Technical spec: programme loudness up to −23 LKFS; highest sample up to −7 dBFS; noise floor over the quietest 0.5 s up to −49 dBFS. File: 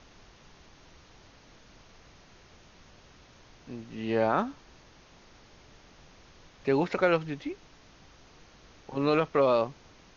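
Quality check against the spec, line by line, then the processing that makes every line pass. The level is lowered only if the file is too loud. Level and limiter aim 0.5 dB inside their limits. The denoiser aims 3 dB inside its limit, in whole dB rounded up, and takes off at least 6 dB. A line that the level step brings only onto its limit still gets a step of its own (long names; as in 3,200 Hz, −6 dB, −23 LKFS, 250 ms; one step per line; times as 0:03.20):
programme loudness −28.5 LKFS: in spec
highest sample −11.5 dBFS: in spec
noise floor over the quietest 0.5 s −56 dBFS: in spec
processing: no processing needed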